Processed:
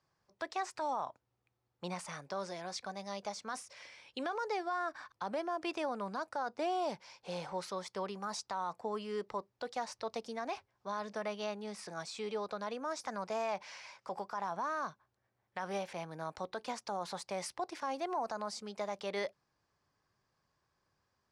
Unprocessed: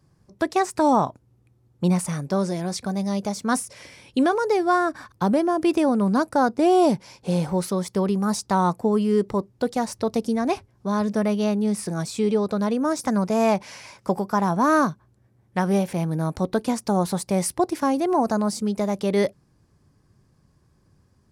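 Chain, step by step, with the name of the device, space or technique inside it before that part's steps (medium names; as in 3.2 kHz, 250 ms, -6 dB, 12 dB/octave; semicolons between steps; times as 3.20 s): DJ mixer with the lows and highs turned down (three-band isolator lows -18 dB, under 560 Hz, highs -21 dB, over 6.6 kHz; peak limiter -20.5 dBFS, peak gain reduction 10 dB); trim -7 dB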